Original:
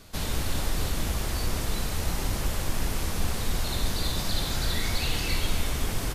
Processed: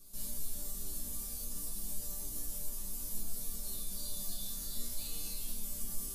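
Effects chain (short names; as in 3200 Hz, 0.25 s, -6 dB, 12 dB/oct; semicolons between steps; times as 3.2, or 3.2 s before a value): EQ curve 110 Hz 0 dB, 2100 Hz -15 dB, 11000 Hz +13 dB; limiter -22.5 dBFS, peak gain reduction 10 dB; resonator bank G3 minor, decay 0.43 s; gain +10 dB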